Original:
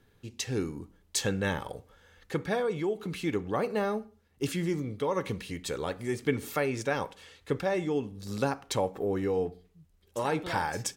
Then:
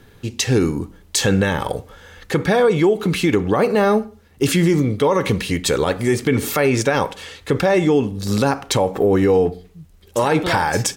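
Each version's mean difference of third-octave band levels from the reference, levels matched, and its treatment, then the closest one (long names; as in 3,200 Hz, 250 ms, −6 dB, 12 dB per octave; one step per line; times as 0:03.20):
2.0 dB: boost into a limiter +23 dB
level −6.5 dB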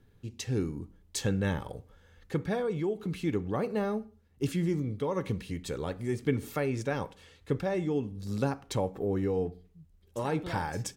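3.0 dB: low-shelf EQ 320 Hz +10 dB
level −5 dB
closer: first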